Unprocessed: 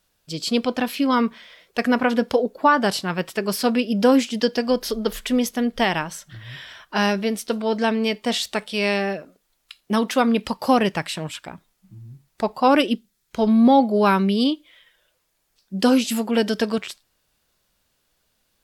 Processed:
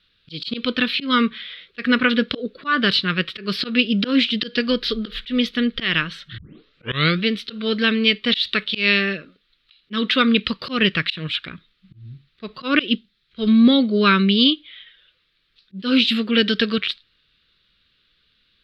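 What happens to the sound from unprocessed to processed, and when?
6.38 s: tape start 0.87 s
whole clip: FFT filter 160 Hz 0 dB, 480 Hz -4 dB, 840 Hz -24 dB, 1.2 kHz +1 dB, 2.2 kHz +5 dB, 3.9 kHz +11 dB, 6.6 kHz -23 dB, 14 kHz -26 dB; slow attack 145 ms; trim +3.5 dB

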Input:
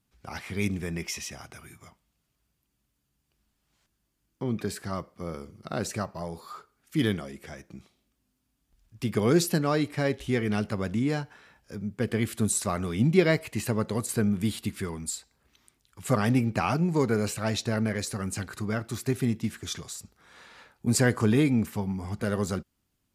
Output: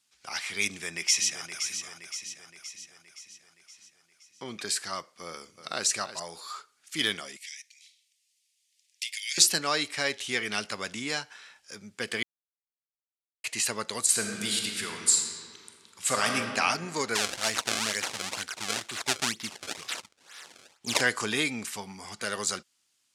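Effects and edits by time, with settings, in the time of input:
0.66–1.64 s: echo throw 520 ms, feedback 55%, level -8 dB
5.25–5.87 s: echo throw 320 ms, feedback 10%, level -11.5 dB
7.37–9.38 s: steep high-pass 1.9 kHz 72 dB/octave
12.23–13.44 s: mute
14.01–16.36 s: reverb throw, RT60 2.4 s, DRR 2 dB
17.15–21.01 s: decimation with a swept rate 27×, swing 160% 2.1 Hz
whole clip: frequency weighting ITU-R 468

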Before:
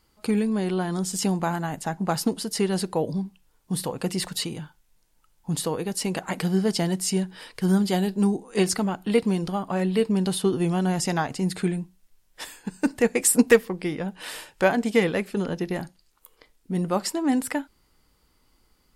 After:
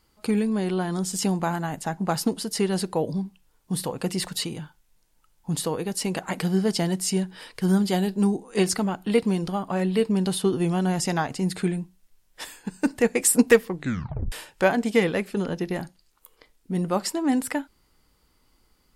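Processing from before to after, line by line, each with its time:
13.72 s: tape stop 0.60 s

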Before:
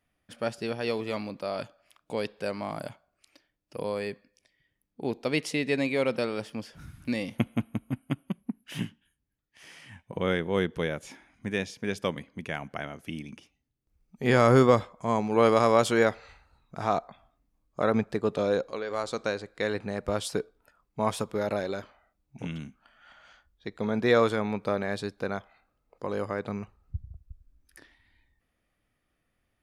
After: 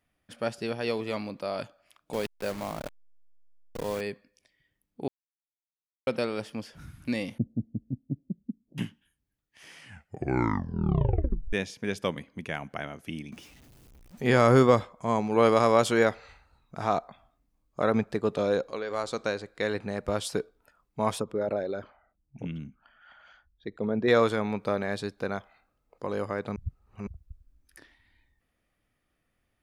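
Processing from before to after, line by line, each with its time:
2.13–4.01 s: send-on-delta sampling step -35.5 dBFS
5.08–6.07 s: mute
7.38–8.78 s: Gaussian low-pass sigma 22 samples
9.80 s: tape stop 1.73 s
13.32–14.23 s: jump at every zero crossing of -48.5 dBFS
21.18–24.08 s: resonances exaggerated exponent 1.5
26.56–27.07 s: reverse

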